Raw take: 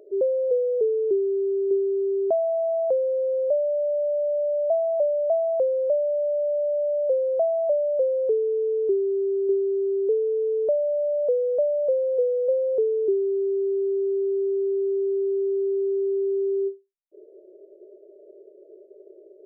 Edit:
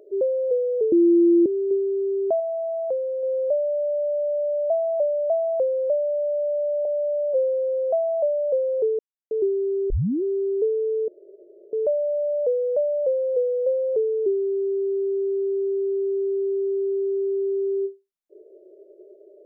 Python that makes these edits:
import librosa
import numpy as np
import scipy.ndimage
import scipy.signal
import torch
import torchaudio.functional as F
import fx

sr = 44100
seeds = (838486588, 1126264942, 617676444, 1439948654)

y = fx.edit(x, sr, fx.bleep(start_s=0.92, length_s=0.54, hz=342.0, db=-12.5),
    fx.clip_gain(start_s=2.4, length_s=0.83, db=-3.0),
    fx.stretch_span(start_s=6.85, length_s=0.53, factor=2.0),
    fx.silence(start_s=8.46, length_s=0.32),
    fx.tape_start(start_s=9.37, length_s=0.33),
    fx.insert_room_tone(at_s=10.55, length_s=0.65), tone=tone)